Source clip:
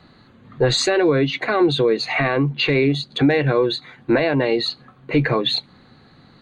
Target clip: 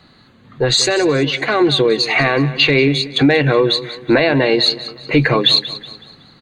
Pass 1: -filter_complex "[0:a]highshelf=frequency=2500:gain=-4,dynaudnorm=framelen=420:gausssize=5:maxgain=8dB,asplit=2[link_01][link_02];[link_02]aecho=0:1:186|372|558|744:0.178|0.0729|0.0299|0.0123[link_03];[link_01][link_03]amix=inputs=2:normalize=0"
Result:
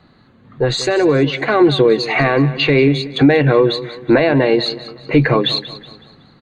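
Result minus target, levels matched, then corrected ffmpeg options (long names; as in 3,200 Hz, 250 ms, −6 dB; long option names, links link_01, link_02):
4,000 Hz band −6.0 dB
-filter_complex "[0:a]highshelf=frequency=2500:gain=7.5,dynaudnorm=framelen=420:gausssize=5:maxgain=8dB,asplit=2[link_01][link_02];[link_02]aecho=0:1:186|372|558|744:0.178|0.0729|0.0299|0.0123[link_03];[link_01][link_03]amix=inputs=2:normalize=0"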